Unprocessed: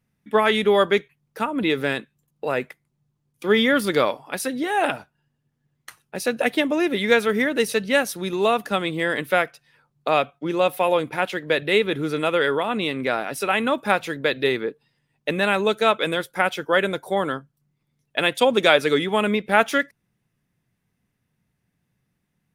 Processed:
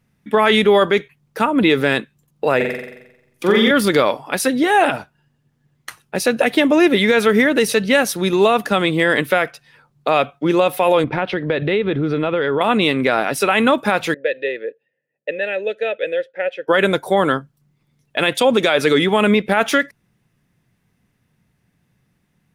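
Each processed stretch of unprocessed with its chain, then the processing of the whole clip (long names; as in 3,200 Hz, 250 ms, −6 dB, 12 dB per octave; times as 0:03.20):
0:02.56–0:03.71: downward compressor 2 to 1, threshold −21 dBFS + flutter between parallel walls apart 7.6 metres, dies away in 0.87 s
0:11.04–0:12.61: spectral tilt −2 dB per octave + downward compressor 4 to 1, threshold −25 dBFS + Savitzky-Golay smoothing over 15 samples
0:14.14–0:16.68: low-pass that shuts in the quiet parts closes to 1,400 Hz, open at −18 dBFS + formant filter e
whole clip: brickwall limiter −13.5 dBFS; high-shelf EQ 8,900 Hz −4 dB; level +9 dB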